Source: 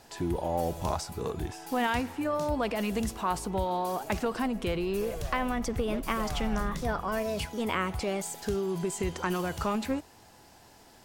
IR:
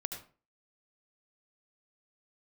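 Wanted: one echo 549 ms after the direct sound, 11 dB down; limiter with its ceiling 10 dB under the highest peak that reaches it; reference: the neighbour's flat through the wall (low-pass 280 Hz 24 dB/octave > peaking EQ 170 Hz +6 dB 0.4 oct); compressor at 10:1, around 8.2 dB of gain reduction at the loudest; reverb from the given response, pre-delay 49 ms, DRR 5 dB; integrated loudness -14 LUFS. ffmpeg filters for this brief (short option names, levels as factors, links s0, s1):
-filter_complex "[0:a]acompressor=threshold=0.0224:ratio=10,alimiter=level_in=1.88:limit=0.0631:level=0:latency=1,volume=0.531,aecho=1:1:549:0.282,asplit=2[s0][s1];[1:a]atrim=start_sample=2205,adelay=49[s2];[s1][s2]afir=irnorm=-1:irlink=0,volume=0.562[s3];[s0][s3]amix=inputs=2:normalize=0,lowpass=f=280:w=0.5412,lowpass=f=280:w=1.3066,equalizer=f=170:t=o:w=0.4:g=6,volume=21.1"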